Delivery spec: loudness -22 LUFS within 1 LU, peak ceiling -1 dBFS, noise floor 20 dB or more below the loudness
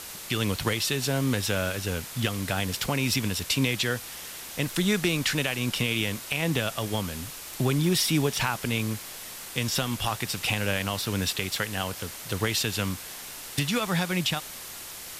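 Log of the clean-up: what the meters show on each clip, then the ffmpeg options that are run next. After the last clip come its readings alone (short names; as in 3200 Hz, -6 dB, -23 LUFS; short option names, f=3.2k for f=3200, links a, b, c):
noise floor -41 dBFS; noise floor target -48 dBFS; loudness -27.5 LUFS; peak -10.5 dBFS; loudness target -22.0 LUFS
-> -af "afftdn=nr=7:nf=-41"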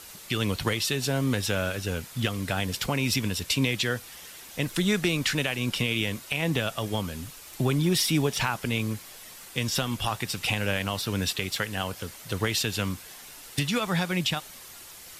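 noise floor -46 dBFS; noise floor target -48 dBFS
-> -af "afftdn=nr=6:nf=-46"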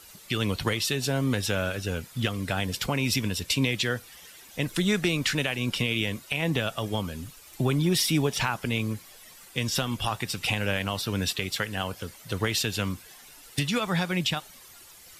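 noise floor -50 dBFS; loudness -27.5 LUFS; peak -11.5 dBFS; loudness target -22.0 LUFS
-> -af "volume=5.5dB"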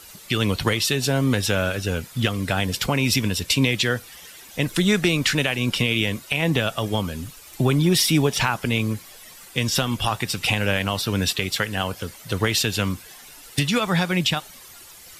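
loudness -22.0 LUFS; peak -6.0 dBFS; noise floor -45 dBFS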